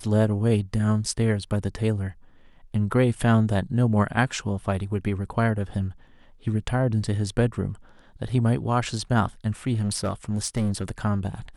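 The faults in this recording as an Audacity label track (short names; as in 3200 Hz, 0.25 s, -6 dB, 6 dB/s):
9.730000	10.910000	clipped -20 dBFS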